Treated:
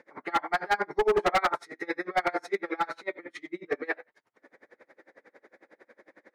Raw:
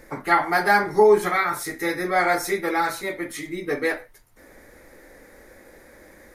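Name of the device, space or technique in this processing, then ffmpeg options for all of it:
helicopter radio: -filter_complex "[0:a]asplit=3[a][b][c];[a]afade=t=out:st=1.09:d=0.02[d];[b]equalizer=f=620:t=o:w=2:g=14,afade=t=in:st=1.09:d=0.02,afade=t=out:st=1.54:d=0.02[e];[c]afade=t=in:st=1.54:d=0.02[f];[d][e][f]amix=inputs=3:normalize=0,highpass=310,lowpass=3k,aeval=exprs='val(0)*pow(10,-30*(0.5-0.5*cos(2*PI*11*n/s))/20)':c=same,asoftclip=type=hard:threshold=-18.5dB"

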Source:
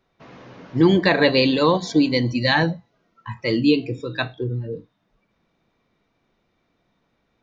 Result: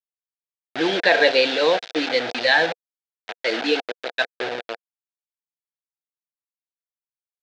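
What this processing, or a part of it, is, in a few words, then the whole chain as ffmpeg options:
hand-held game console: -filter_complex "[0:a]asettb=1/sr,asplit=3[a][b][c];[a]atrim=end=3.464[d];[b]atrim=start=3.46:end=4.08,asetpts=PTS-STARTPTS,afade=t=in:d=0.004:c=qsin,afade=t=out:st=0.616:d=0.004:c=qsin,highpass=f=160:w=0.5412,highpass=f=160:w=1.3066[e];[c]atrim=start=4.076[f];[d][e]acrossfade=d=0.004:c1=hsin:c2=qsin[g];[g][f]acrossfade=d=0.004:c1=qsin:c2=hsin,acrusher=bits=3:mix=0:aa=0.000001,highpass=480,equalizer=f=490:t=q:w=4:g=6,equalizer=f=700:t=q:w=4:g=7,equalizer=f=1.1k:t=q:w=4:g=-9,equalizer=f=1.6k:t=q:w=4:g=7,equalizer=f=2.4k:t=q:w=4:g=3,equalizer=f=3.6k:t=q:w=4:g=5,lowpass=f=4.8k:w=0.5412,lowpass=f=4.8k:w=1.3066,volume=-1.5dB"

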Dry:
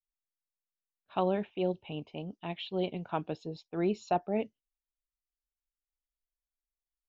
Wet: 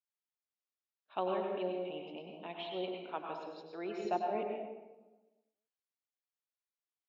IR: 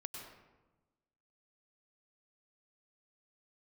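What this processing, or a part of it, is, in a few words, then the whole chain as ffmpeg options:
supermarket ceiling speaker: -filter_complex "[0:a]highpass=330,lowpass=5.6k[a];[1:a]atrim=start_sample=2205[b];[a][b]afir=irnorm=-1:irlink=0,asettb=1/sr,asplit=3[c][d][e];[c]atrim=end=2.924[f];[d]atrim=start=2.92:end=4.05,asetpts=PTS-STARTPTS,afade=t=in:d=0.004:c=qsin,afade=t=out:st=1.126:d=0.004:c=qsin,lowshelf=f=420:g=-7[g];[e]atrim=start=4.046[h];[f][g]acrossfade=d=0.004:c1=hsin:c2=qsin[i];[i][h]acrossfade=d=0.004:c1=qsin:c2=hsin"

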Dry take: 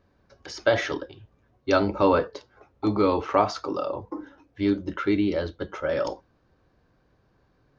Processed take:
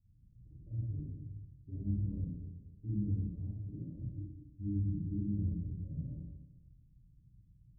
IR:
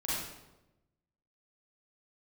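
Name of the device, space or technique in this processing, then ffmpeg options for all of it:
club heard from the street: -filter_complex "[0:a]alimiter=limit=-17.5dB:level=0:latency=1:release=67,lowpass=f=160:w=0.5412,lowpass=f=160:w=1.3066[a];[1:a]atrim=start_sample=2205[b];[a][b]afir=irnorm=-1:irlink=0,volume=-2dB"

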